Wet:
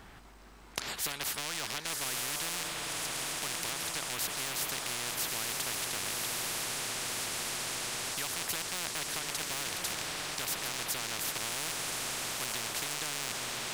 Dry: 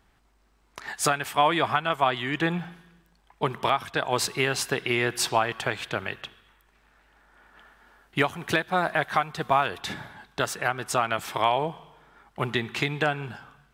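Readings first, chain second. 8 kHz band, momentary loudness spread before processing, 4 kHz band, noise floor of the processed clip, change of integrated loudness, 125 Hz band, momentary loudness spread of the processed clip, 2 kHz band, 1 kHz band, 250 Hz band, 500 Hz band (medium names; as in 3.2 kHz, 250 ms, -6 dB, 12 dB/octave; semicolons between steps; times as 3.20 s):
+4.0 dB, 11 LU, -1.0 dB, -52 dBFS, -7.0 dB, -14.0 dB, 2 LU, -8.5 dB, -14.5 dB, -14.0 dB, -15.5 dB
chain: rattle on loud lows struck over -39 dBFS, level -19 dBFS; echo that smears into a reverb 1153 ms, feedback 65%, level -8.5 dB; spectrum-flattening compressor 10:1; trim -3 dB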